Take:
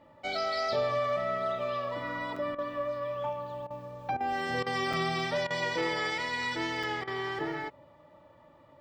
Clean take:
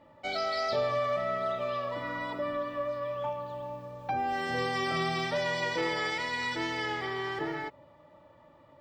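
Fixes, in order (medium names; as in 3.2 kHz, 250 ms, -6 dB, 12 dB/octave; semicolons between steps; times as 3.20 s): interpolate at 2.36/4.93/6.83 s, 4.4 ms; interpolate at 2.55/3.67/4.17/4.63/5.47/7.04 s, 33 ms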